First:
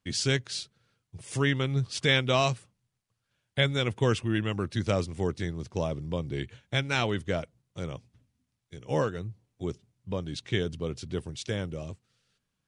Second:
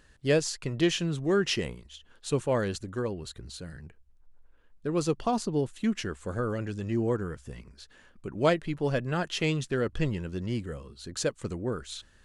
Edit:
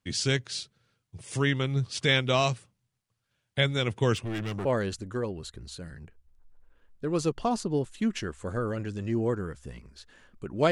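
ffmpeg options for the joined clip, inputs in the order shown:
ffmpeg -i cue0.wav -i cue1.wav -filter_complex "[0:a]asettb=1/sr,asplit=3[link_01][link_02][link_03];[link_01]atrim=end=4.154[link_04];[link_02]atrim=start=4.15:end=4.65,asetpts=PTS-STARTPTS,afade=type=in:duration=0.004:curve=qsin,afade=type=out:start_time=0.496:duration=0.004:curve=qsin,asoftclip=type=hard:threshold=-29dB[link_05];[link_03]atrim=start=4.646[link_06];[link_04][link_05]acrossfade=duration=0.004:curve1=hsin:curve2=qsin[link_07];[link_07][link_06]acrossfade=duration=0.004:curve1=qsin:curve2=hsin,apad=whole_dur=10.71,atrim=end=10.71,atrim=end=4.652[link_08];[1:a]atrim=start=2.468:end=8.53[link_09];[link_08][link_09]acrossfade=duration=0.004:curve1=hsin:curve2=hsin" out.wav

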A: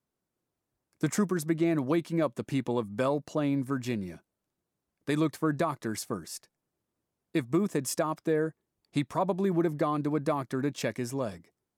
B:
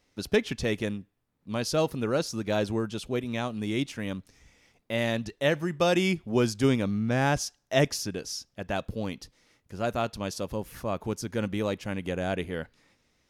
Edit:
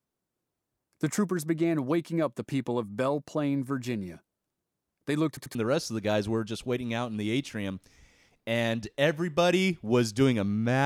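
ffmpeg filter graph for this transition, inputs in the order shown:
ffmpeg -i cue0.wav -i cue1.wav -filter_complex "[0:a]apad=whole_dur=10.85,atrim=end=10.85,asplit=3[link_01][link_02][link_03];[link_01]atrim=end=5.372[link_04];[link_02]atrim=start=5.278:end=5.372[link_05];[link_03]atrim=start=5.278:end=5.372[link_06];[1:a]atrim=start=1.978:end=7.28[link_07];[link_04][link_05]acrossfade=duration=0.004:curve1=hsin:curve2=hsin[link_08];[link_08][link_06]acrossfade=duration=0.004:curve1=hsin:curve2=hsin[link_09];[link_09][link_07]acrossfade=duration=0.004:curve1=hsin:curve2=hsin" out.wav

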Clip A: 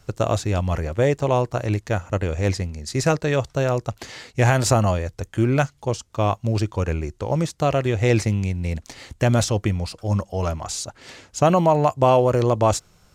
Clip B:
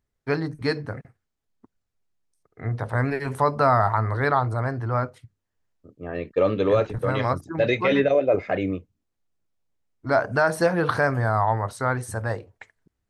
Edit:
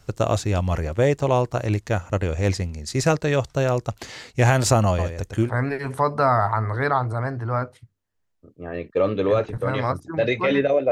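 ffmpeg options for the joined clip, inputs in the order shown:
ffmpeg -i cue0.wav -i cue1.wav -filter_complex "[0:a]asettb=1/sr,asplit=3[link_01][link_02][link_03];[link_01]atrim=end=4.874[link_04];[link_02]atrim=start=4.87:end=5.51,asetpts=PTS-STARTPTS,afade=type=in:duration=0.004:curve=qsin,afade=type=out:start_time=0.636:duration=0.004:curve=qsin,aecho=1:1:114:0.447,atrim=end_sample=28224[link_05];[link_03]atrim=start=5.506[link_06];[link_04][link_05]acrossfade=duration=0.004:curve1=hsin:curve2=qsin[link_07];[link_07][link_06]acrossfade=duration=0.004:curve1=qsin:curve2=hsin,apad=whole_dur=10.91,atrim=end=10.91,atrim=end=5.51,asetpts=PTS-STARTPTS[link_08];[1:a]atrim=start=2.82:end=8.32,asetpts=PTS-STARTPTS[link_09];[link_08][link_09]acrossfade=duration=0.1:curve1=tri:curve2=tri" out.wav

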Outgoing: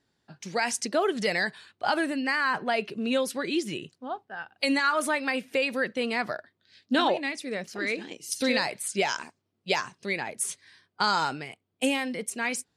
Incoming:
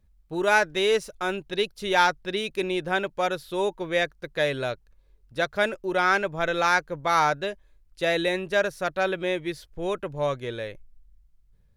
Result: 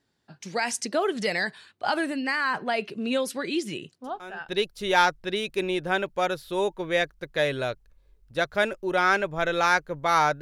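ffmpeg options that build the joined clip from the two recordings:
ffmpeg -i cue0.wav -i cue1.wav -filter_complex "[1:a]asplit=2[link_01][link_02];[0:a]apad=whole_dur=10.41,atrim=end=10.41,atrim=end=4.492[link_03];[link_02]atrim=start=1.498:end=7.42[link_04];[link_01]atrim=start=1.05:end=1.5,asetpts=PTS-STARTPTS,volume=-14dB,afade=type=in:duration=0.004:curve=hsin,afade=type=out:start_time=0.446:duration=0.004:curve=hsin,adelay=4040[link_05];[link_03][link_04]acrossfade=duration=0.004:curve1=hsin:curve2=hsin[link_06];[link_06][link_05]amix=inputs=2:normalize=0" out.wav

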